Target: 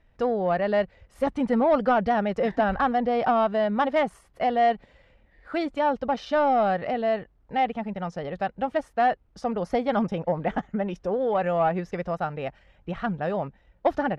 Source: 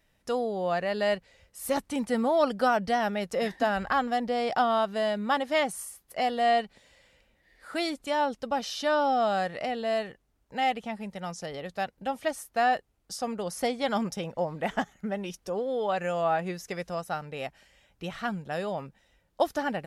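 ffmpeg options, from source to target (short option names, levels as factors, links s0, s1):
-filter_complex "[0:a]aemphasis=mode=reproduction:type=riaa,atempo=1.4,asplit=2[s0][s1];[s1]highpass=f=720:p=1,volume=3.55,asoftclip=type=tanh:threshold=0.299[s2];[s0][s2]amix=inputs=2:normalize=0,lowpass=f=2300:p=1,volume=0.501"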